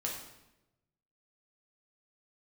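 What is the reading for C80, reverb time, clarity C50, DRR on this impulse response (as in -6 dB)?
6.5 dB, 0.95 s, 3.5 dB, -2.5 dB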